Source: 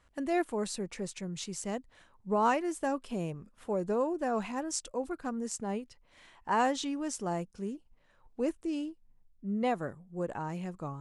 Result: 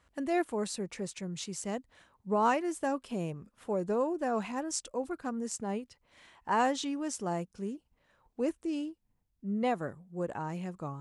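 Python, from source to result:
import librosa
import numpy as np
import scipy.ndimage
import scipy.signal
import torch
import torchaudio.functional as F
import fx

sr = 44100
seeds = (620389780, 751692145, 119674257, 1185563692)

y = scipy.signal.sosfilt(scipy.signal.butter(2, 43.0, 'highpass', fs=sr, output='sos'), x)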